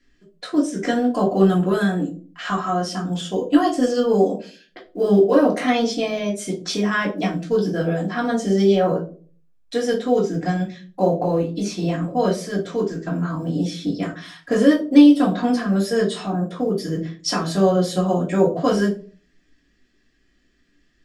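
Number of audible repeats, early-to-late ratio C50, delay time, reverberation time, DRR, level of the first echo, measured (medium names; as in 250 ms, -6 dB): no echo, 10.5 dB, no echo, 0.40 s, -4.5 dB, no echo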